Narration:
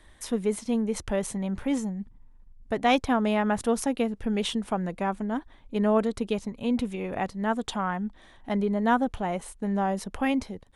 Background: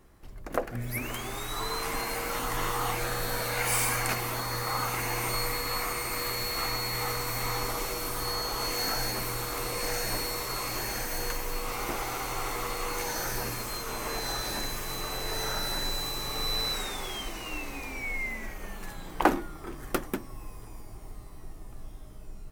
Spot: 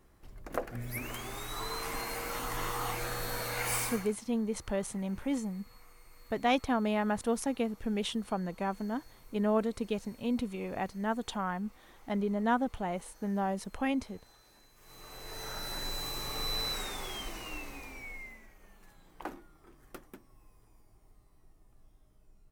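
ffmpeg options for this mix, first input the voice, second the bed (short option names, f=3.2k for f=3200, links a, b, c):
-filter_complex "[0:a]adelay=3600,volume=-5.5dB[a];[1:a]volume=20dB,afade=t=out:st=3.75:d=0.37:silence=0.0630957,afade=t=in:st=14.75:d=1.41:silence=0.0562341,afade=t=out:st=17.35:d=1.11:silence=0.188365[b];[a][b]amix=inputs=2:normalize=0"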